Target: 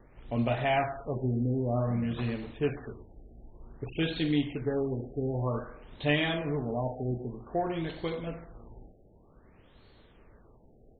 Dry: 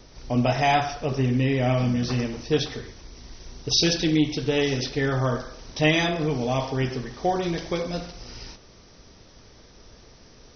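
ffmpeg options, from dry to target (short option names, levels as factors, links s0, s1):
-af "asetrate=42336,aresample=44100,afftfilt=real='re*lt(b*sr/1024,800*pow(4500/800,0.5+0.5*sin(2*PI*0.53*pts/sr)))':imag='im*lt(b*sr/1024,800*pow(4500/800,0.5+0.5*sin(2*PI*0.53*pts/sr)))':win_size=1024:overlap=0.75,volume=0.473"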